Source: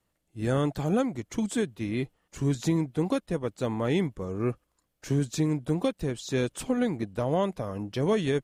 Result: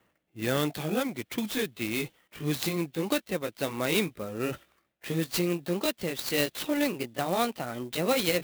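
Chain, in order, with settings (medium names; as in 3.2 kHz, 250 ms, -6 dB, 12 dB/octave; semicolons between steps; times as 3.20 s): pitch bend over the whole clip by +3.5 st starting unshifted; frequency weighting D; reverse; upward compressor, threshold -32 dBFS; reverse; level-controlled noise filter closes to 1.6 kHz, open at -25 dBFS; sampling jitter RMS 0.034 ms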